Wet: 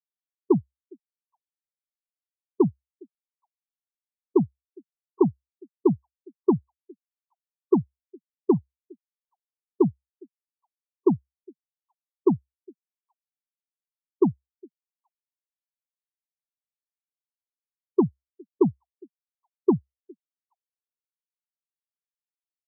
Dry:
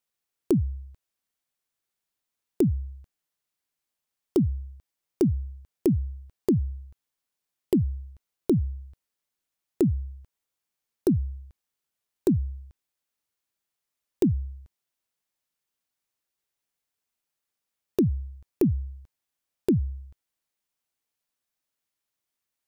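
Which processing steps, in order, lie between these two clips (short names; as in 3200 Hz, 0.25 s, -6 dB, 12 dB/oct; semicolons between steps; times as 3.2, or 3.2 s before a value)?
tone controls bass -7 dB, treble +10 dB; overloaded stage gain 24 dB; HPF 110 Hz 12 dB/oct; band shelf 720 Hz +14.5 dB; delay with a stepping band-pass 0.409 s, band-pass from 320 Hz, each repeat 1.4 oct, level -6.5 dB; spectral expander 4:1; gain +2.5 dB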